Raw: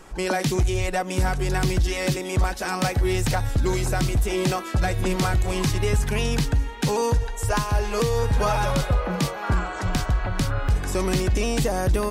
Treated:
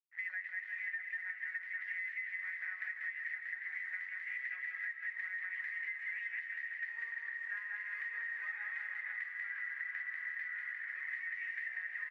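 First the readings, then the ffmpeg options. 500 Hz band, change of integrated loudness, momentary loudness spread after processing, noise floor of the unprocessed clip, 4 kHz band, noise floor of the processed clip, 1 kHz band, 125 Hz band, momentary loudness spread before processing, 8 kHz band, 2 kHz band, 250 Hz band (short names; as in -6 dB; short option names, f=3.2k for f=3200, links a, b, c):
under -40 dB, -15.5 dB, 2 LU, -33 dBFS, under -30 dB, -48 dBFS, -33.0 dB, under -40 dB, 3 LU, under -40 dB, -4.0 dB, under -40 dB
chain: -filter_complex "[0:a]asplit=2[a][b];[b]acrusher=bits=4:mix=0:aa=0.000001,volume=-6.5dB[c];[a][c]amix=inputs=2:normalize=0,flanger=delay=9.8:depth=5.8:regen=51:speed=0.21:shape=triangular,aeval=exprs='sgn(val(0))*max(abs(val(0))-0.0112,0)':c=same,asuperpass=centerf=1900:order=4:qfactor=7.7,asplit=2[d][e];[e]aecho=0:1:190|351.5|488.8|605.5|704.6:0.631|0.398|0.251|0.158|0.1[f];[d][f]amix=inputs=2:normalize=0,aphaser=in_gain=1:out_gain=1:delay=4.7:decay=0.22:speed=1.1:type=sinusoidal,alimiter=level_in=9dB:limit=-24dB:level=0:latency=1:release=344,volume=-9dB,acompressor=threshold=-45dB:ratio=6,volume=7.5dB"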